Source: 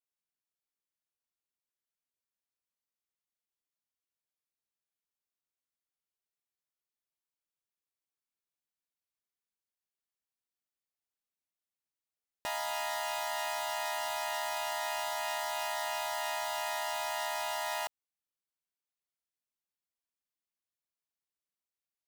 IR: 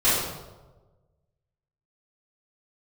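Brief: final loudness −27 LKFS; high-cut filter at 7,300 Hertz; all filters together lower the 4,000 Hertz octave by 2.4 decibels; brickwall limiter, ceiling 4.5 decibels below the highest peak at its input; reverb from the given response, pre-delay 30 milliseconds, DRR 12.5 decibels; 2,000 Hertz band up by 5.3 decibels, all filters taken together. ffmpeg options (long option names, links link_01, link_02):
-filter_complex "[0:a]lowpass=7300,equalizer=frequency=2000:width_type=o:gain=7.5,equalizer=frequency=4000:width_type=o:gain=-6.5,alimiter=level_in=1.5dB:limit=-24dB:level=0:latency=1,volume=-1.5dB,asplit=2[link_01][link_02];[1:a]atrim=start_sample=2205,adelay=30[link_03];[link_02][link_03]afir=irnorm=-1:irlink=0,volume=-29.5dB[link_04];[link_01][link_04]amix=inputs=2:normalize=0,volume=7dB"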